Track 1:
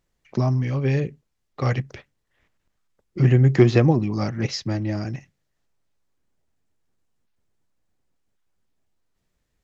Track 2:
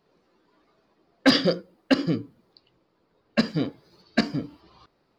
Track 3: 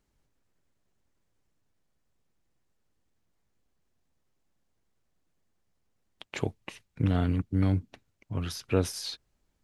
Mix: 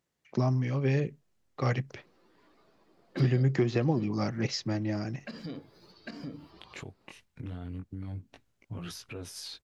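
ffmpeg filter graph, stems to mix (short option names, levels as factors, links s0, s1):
-filter_complex "[0:a]highpass=110,volume=0.596,asplit=2[s0][s1];[1:a]bandreject=f=50:t=h:w=6,bandreject=f=100:t=h:w=6,bandreject=f=150:t=h:w=6,acompressor=threshold=0.0794:ratio=6,adelay=1900,volume=1[s2];[2:a]flanger=delay=17:depth=6.3:speed=0.36,alimiter=limit=0.075:level=0:latency=1:release=366,adelay=400,volume=1.19[s3];[s1]apad=whole_len=312349[s4];[s2][s4]sidechaincompress=threshold=0.0398:ratio=8:attack=16:release=527[s5];[s5][s3]amix=inputs=2:normalize=0,alimiter=level_in=2.24:limit=0.0631:level=0:latency=1:release=186,volume=0.447,volume=1[s6];[s0][s6]amix=inputs=2:normalize=0,alimiter=limit=0.168:level=0:latency=1:release=394"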